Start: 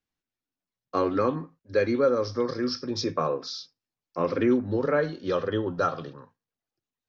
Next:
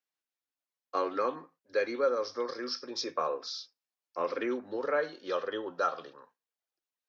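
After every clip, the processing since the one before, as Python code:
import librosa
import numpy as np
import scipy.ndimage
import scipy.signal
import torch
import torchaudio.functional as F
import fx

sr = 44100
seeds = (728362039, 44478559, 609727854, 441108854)

y = scipy.signal.sosfilt(scipy.signal.butter(2, 490.0, 'highpass', fs=sr, output='sos'), x)
y = F.gain(torch.from_numpy(y), -3.0).numpy()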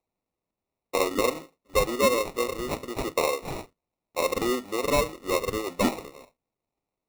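y = fx.sample_hold(x, sr, seeds[0], rate_hz=1600.0, jitter_pct=0)
y = F.gain(torch.from_numpy(y), 6.0).numpy()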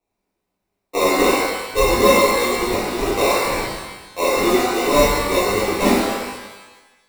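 y = fx.rev_shimmer(x, sr, seeds[1], rt60_s=1.1, semitones=12, shimmer_db=-8, drr_db=-11.0)
y = F.gain(torch.from_numpy(y), -2.5).numpy()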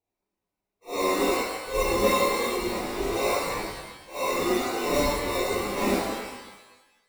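y = fx.phase_scramble(x, sr, seeds[2], window_ms=200)
y = F.gain(torch.from_numpy(y), -8.5).numpy()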